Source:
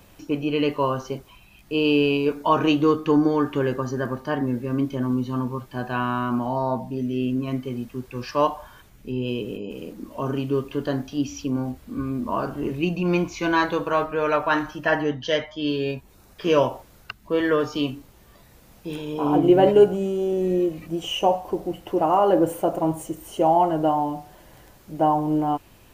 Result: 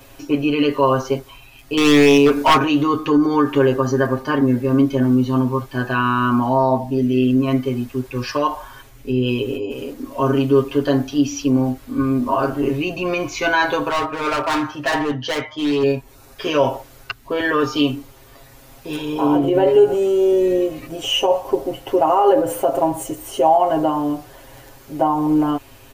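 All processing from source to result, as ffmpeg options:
-filter_complex "[0:a]asettb=1/sr,asplit=3[s0][s1][s2];[s0]atrim=end=1.774[s3];[s1]atrim=start=1.77:end=2.58,asetpts=PTS-STARTPTS,afade=t=in:d=0.004:c=qsin,afade=t=out:st=0.806:d=0.004:c=qsin,acontrast=69,aeval=exprs='0.299*(abs(mod(val(0)/0.299+3,4)-2)-1)':c=same[s4];[s2]atrim=start=2.576[s5];[s3][s4]acrossfade=d=0.004:c1=hsin:c2=qsin[s6];[s6][s5]acrossfade=d=0.004:c1=qsin:c2=hsin,asettb=1/sr,asplit=3[s7][s8][s9];[s7]atrim=end=13.894[s10];[s8]atrim=start=13.89:end=15.83,asetpts=PTS-STARTPTS,afade=t=in:d=0.004:c=qsin,afade=t=out:st=1.936:d=0.004:c=qsin,highpass=f=61:w=0.5412,highpass=f=61:w=1.3066,highshelf=f=6700:g=-11.5,volume=16.8,asoftclip=hard,volume=0.0596[s11];[s9]atrim=start=15.826[s12];[s10][s11]acrossfade=d=0.004:c1=hsin:c2=qsin[s13];[s13][s12]acrossfade=d=0.004:c1=qsin:c2=hsin,alimiter=limit=0.178:level=0:latency=1:release=74,equalizer=f=170:t=o:w=0.4:g=-14.5,aecho=1:1:7.4:0.94,volume=1.88"

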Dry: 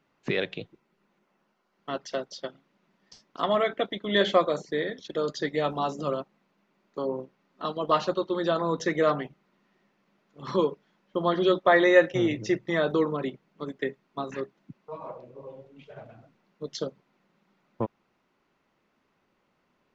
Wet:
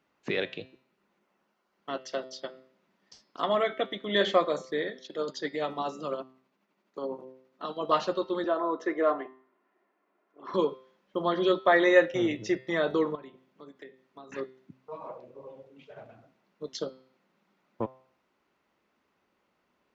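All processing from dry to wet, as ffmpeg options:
-filter_complex "[0:a]asettb=1/sr,asplit=3[s0][s1][s2];[s0]atrim=end=4.884[s3];[s1]atrim=start=4.88:end=7.81,asetpts=PTS-STARTPTS,afade=t=in:d=0.004:c=qsin,afade=t=out:st=2.926:d=0.004:c=qsin,highpass=120,tremolo=f=12:d=0.45[s4];[s2]atrim=start=7.806[s5];[s3][s4]acrossfade=d=0.004:c1=hsin:c2=qsin[s6];[s6][s5]acrossfade=d=0.004:c1=qsin:c2=hsin,asettb=1/sr,asplit=3[s7][s8][s9];[s7]atrim=end=8.444[s10];[s8]atrim=start=8.44:end=10.54,asetpts=PTS-STARTPTS,afade=t=in:d=0.004:c=qsin,afade=t=out:st=2.096:d=0.004:c=qsin,acrossover=split=250 2000:gain=0.0708 1 0.158[s11][s12][s13];[s11][s12][s13]amix=inputs=3:normalize=0,aecho=1:1:2.9:0.4,atrim=end_sample=92610[s14];[s9]atrim=start=10.536[s15];[s10][s14]acrossfade=d=0.004:c1=hsin:c2=qsin[s16];[s16][s15]acrossfade=d=0.004:c1=qsin:c2=hsin,asettb=1/sr,asplit=3[s17][s18][s19];[s17]atrim=end=13.154[s20];[s18]atrim=start=13.15:end=14.32,asetpts=PTS-STARTPTS,afade=t=in:d=0.004:c=qsin,afade=t=out:st=1.166:d=0.004:c=qsin,acompressor=threshold=0.00562:ratio=3:attack=3.2:release=140:knee=1:detection=peak,bandreject=f=177.8:t=h:w=4,bandreject=f=355.6:t=h:w=4,bandreject=f=533.4:t=h:w=4,bandreject=f=711.2:t=h:w=4,bandreject=f=889:t=h:w=4,bandreject=f=1066.8:t=h:w=4,bandreject=f=1244.6:t=h:w=4,bandreject=f=1422.4:t=h:w=4,bandreject=f=1600.2:t=h:w=4,bandreject=f=1778:t=h:w=4,bandreject=f=1955.8:t=h:w=4,bandreject=f=2133.6:t=h:w=4,bandreject=f=2311.4:t=h:w=4,bandreject=f=2489.2:t=h:w=4,bandreject=f=2667:t=h:w=4,bandreject=f=2844.8:t=h:w=4,bandreject=f=3022.6:t=h:w=4,bandreject=f=3200.4:t=h:w=4,bandreject=f=3378.2:t=h:w=4,bandreject=f=3556:t=h:w=4,bandreject=f=3733.8:t=h:w=4,bandreject=f=3911.6:t=h:w=4,bandreject=f=4089.4:t=h:w=4,bandreject=f=4267.2:t=h:w=4,bandreject=f=4445:t=h:w=4,bandreject=f=4622.8:t=h:w=4,bandreject=f=4800.6:t=h:w=4,bandreject=f=4978.4:t=h:w=4,bandreject=f=5156.2:t=h:w=4,bandreject=f=5334:t=h:w=4,bandreject=f=5511.8:t=h:w=4[s21];[s19]atrim=start=14.316[s22];[s20][s21]acrossfade=d=0.004:c1=hsin:c2=qsin[s23];[s23][s22]acrossfade=d=0.004:c1=qsin:c2=hsin,highpass=46,equalizer=f=140:t=o:w=1:g=-6,bandreject=f=130.1:t=h:w=4,bandreject=f=260.2:t=h:w=4,bandreject=f=390.3:t=h:w=4,bandreject=f=520.4:t=h:w=4,bandreject=f=650.5:t=h:w=4,bandreject=f=780.6:t=h:w=4,bandreject=f=910.7:t=h:w=4,bandreject=f=1040.8:t=h:w=4,bandreject=f=1170.9:t=h:w=4,bandreject=f=1301:t=h:w=4,bandreject=f=1431.1:t=h:w=4,bandreject=f=1561.2:t=h:w=4,bandreject=f=1691.3:t=h:w=4,bandreject=f=1821.4:t=h:w=4,bandreject=f=1951.5:t=h:w=4,bandreject=f=2081.6:t=h:w=4,bandreject=f=2211.7:t=h:w=4,bandreject=f=2341.8:t=h:w=4,bandreject=f=2471.9:t=h:w=4,bandreject=f=2602:t=h:w=4,bandreject=f=2732.1:t=h:w=4,bandreject=f=2862.2:t=h:w=4,bandreject=f=2992.3:t=h:w=4,bandreject=f=3122.4:t=h:w=4,bandreject=f=3252.5:t=h:w=4,bandreject=f=3382.6:t=h:w=4,bandreject=f=3512.7:t=h:w=4,bandreject=f=3642.8:t=h:w=4,bandreject=f=3772.9:t=h:w=4,bandreject=f=3903:t=h:w=4,bandreject=f=4033.1:t=h:w=4,bandreject=f=4163.2:t=h:w=4,bandreject=f=4293.3:t=h:w=4,bandreject=f=4423.4:t=h:w=4,bandreject=f=4553.5:t=h:w=4,bandreject=f=4683.6:t=h:w=4,bandreject=f=4813.7:t=h:w=4,bandreject=f=4943.8:t=h:w=4,bandreject=f=5073.9:t=h:w=4,bandreject=f=5204:t=h:w=4,volume=0.841"

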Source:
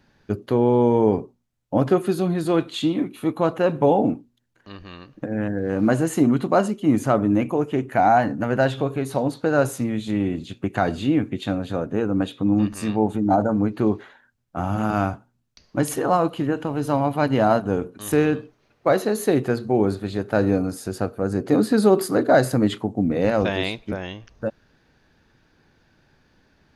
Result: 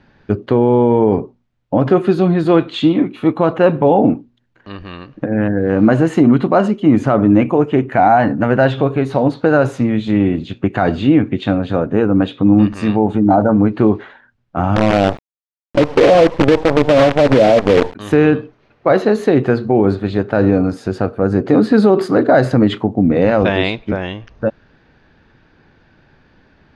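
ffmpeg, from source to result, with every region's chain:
-filter_complex "[0:a]asettb=1/sr,asplit=3[s0][s1][s2];[s0]atrim=end=14.764[s3];[s1]atrim=start=14.76:end=17.95,asetpts=PTS-STARTPTS,afade=t=in:d=0.004:c=qsin,afade=t=out:st=3.186:d=0.004:c=qsin,lowpass=f=540:t=q:w=3.9,acrusher=bits=4:dc=4:mix=0:aa=0.000001[s4];[s2]atrim=start=17.946[s5];[s3][s4]acrossfade=d=0.004:c1=hsin:c2=qsin[s6];[s6][s5]acrossfade=d=0.004:c1=qsin:c2=hsin,lowpass=3300,alimiter=level_in=3.16:limit=0.891:release=50:level=0:latency=1,volume=0.891"

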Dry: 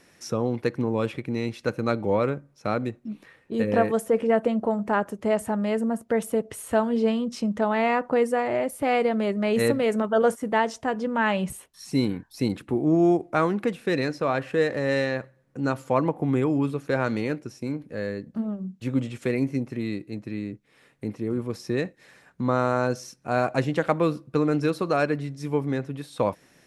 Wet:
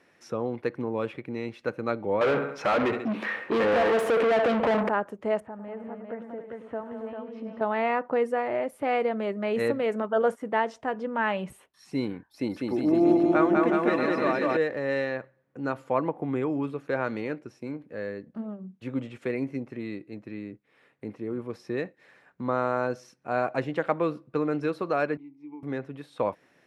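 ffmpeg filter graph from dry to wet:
-filter_complex "[0:a]asettb=1/sr,asplit=3[s0][s1][s2];[s0]atrim=end=2.214[s3];[s1]atrim=start=2.21:end=4.89,asetpts=PTS-STARTPTS,afade=t=in:d=0.004:c=qsin,afade=t=out:st=2.676:d=0.004:c=qsin,acompressor=threshold=0.0794:ratio=4:attack=3.2:release=140:knee=1:detection=peak,aecho=1:1:69|138|207|276:0.188|0.0829|0.0365|0.016,atrim=end_sample=118188,asplit=2[s4][s5];[s5]highpass=f=720:p=1,volume=50.1,asoftclip=type=tanh:threshold=0.237[s6];[s4][s6]amix=inputs=2:normalize=0,lowpass=f=3300:p=1,volume=0.501[s7];[s2]atrim=start=4.886[s8];[s3][s7]acrossfade=d=0.004:c1=hsin:c2=qsin[s9];[s9][s8]acrossfade=d=0.004:c1=qsin:c2=hsin,asettb=1/sr,asplit=3[s10][s11][s12];[s10]atrim=end=5.404[s13];[s11]atrim=start=5.4:end=7.61,asetpts=PTS-STARTPTS,afade=t=in:d=0.004:c=qsin,afade=t=out:st=2.206:d=0.004:c=qsin,lowpass=2000,acompressor=threshold=0.00398:ratio=1.5:attack=3.2:release=140:knee=1:detection=peak,aecho=1:1:102|191|276|398|761:0.282|0.335|0.299|0.631|0.133,atrim=end_sample=97461[s14];[s12]atrim=start=7.606[s15];[s13][s14]acrossfade=d=0.004:c1=hsin:c2=qsin[s16];[s16][s15]acrossfade=d=0.004:c1=qsin:c2=hsin,asettb=1/sr,asplit=3[s17][s18][s19];[s17]atrim=end=12.294[s20];[s18]atrim=start=12.29:end=14.57,asetpts=PTS-STARTPTS,afade=t=in:d=0.004:c=qsin,afade=t=out:st=2.276:d=0.004:c=qsin,aecho=1:1:3.4:0.35,atrim=end_sample=100548,aecho=1:1:200|370|514.5|637.3|741.7|830.5:0.794|0.631|0.501|0.398|0.316|0.251,atrim=end_sample=100548[s21];[s19]atrim=start=14.566[s22];[s20][s21]acrossfade=d=0.004:c1=hsin:c2=qsin[s23];[s23][s22]acrossfade=d=0.004:c1=qsin:c2=hsin,asettb=1/sr,asplit=3[s24][s25][s26];[s24]atrim=end=25.174[s27];[s25]atrim=start=25.17:end=25.63,asetpts=PTS-STARTPTS,afade=t=in:d=0.004:c=qsin,afade=t=out:st=0.456:d=0.004:c=qsin,acompressor=threshold=0.0447:ratio=4:attack=3.2:release=140:knee=1:detection=peak,asplit=3[s28][s29][s30];[s28]bandpass=f=300:t=q:w=8,volume=1[s31];[s29]bandpass=f=870:t=q:w=8,volume=0.501[s32];[s30]bandpass=f=2240:t=q:w=8,volume=0.355[s33];[s31][s32][s33]amix=inputs=3:normalize=0[s34];[s26]atrim=start=25.626[s35];[s27][s34]acrossfade=d=0.004:c1=hsin:c2=qsin[s36];[s36][s35]acrossfade=d=0.004:c1=qsin:c2=hsin,highpass=61,bass=f=250:g=-7,treble=f=4000:g=-13,volume=0.75"

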